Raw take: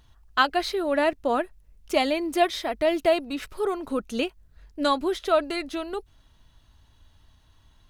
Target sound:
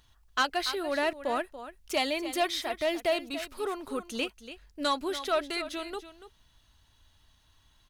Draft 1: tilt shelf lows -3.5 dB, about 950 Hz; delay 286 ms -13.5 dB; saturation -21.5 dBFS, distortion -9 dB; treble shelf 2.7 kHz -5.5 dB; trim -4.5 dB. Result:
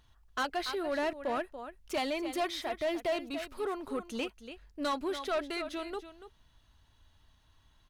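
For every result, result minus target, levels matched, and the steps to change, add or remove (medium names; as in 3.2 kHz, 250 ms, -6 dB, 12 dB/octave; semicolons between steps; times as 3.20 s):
saturation: distortion +8 dB; 4 kHz band -3.0 dB
change: saturation -13.5 dBFS, distortion -17 dB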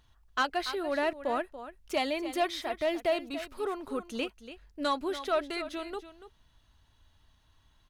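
4 kHz band -3.5 dB
change: treble shelf 2.7 kHz +2 dB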